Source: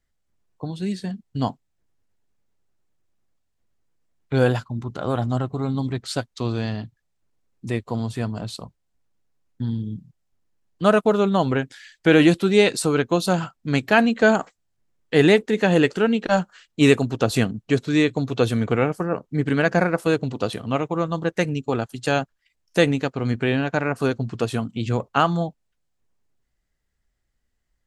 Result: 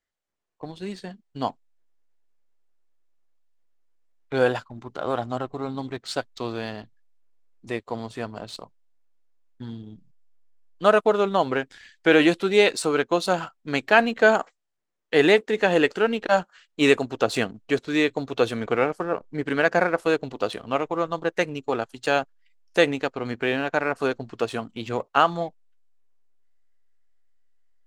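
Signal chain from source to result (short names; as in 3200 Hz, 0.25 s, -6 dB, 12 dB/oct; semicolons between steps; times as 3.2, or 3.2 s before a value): LPF 10000 Hz; tone controls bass -15 dB, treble -3 dB; in parallel at -3.5 dB: backlash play -32.5 dBFS; on the sum: gain -3.5 dB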